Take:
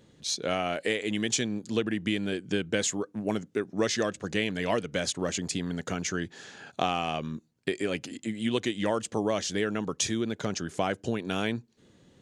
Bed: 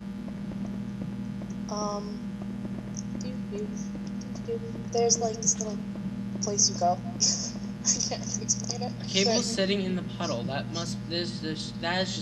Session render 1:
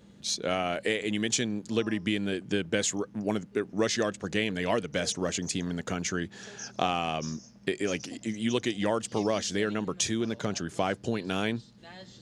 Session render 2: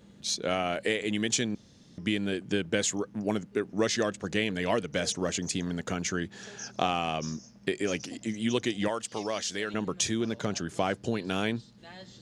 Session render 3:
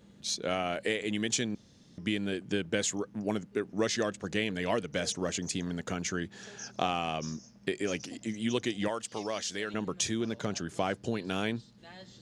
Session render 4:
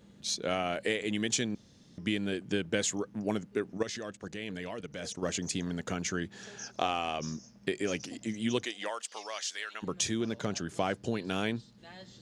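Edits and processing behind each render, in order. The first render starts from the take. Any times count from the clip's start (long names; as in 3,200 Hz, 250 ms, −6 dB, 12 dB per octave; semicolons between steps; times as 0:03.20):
mix in bed −19.5 dB
0:01.55–0:01.98: fill with room tone; 0:08.88–0:09.74: low-shelf EQ 470 Hz −10.5 dB
level −2.5 dB
0:03.77–0:05.23: output level in coarse steps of 13 dB; 0:06.65–0:07.20: parametric band 160 Hz −10 dB; 0:08.63–0:09.82: high-pass filter 530 Hz → 1,200 Hz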